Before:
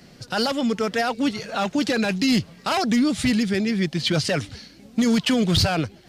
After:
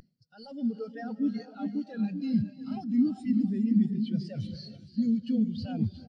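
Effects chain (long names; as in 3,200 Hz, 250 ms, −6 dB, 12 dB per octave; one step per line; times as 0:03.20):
high-shelf EQ 2,500 Hz +9.5 dB
reversed playback
downward compressor 16 to 1, threshold −32 dBFS, peak gain reduction 21.5 dB
reversed playback
wave folding −29.5 dBFS
on a send: single-tap delay 678 ms −8.5 dB
on the sum: reverb whose tail is shaped and stops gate 450 ms rising, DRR 3 dB
every bin expanded away from the loudest bin 2.5 to 1
level +6.5 dB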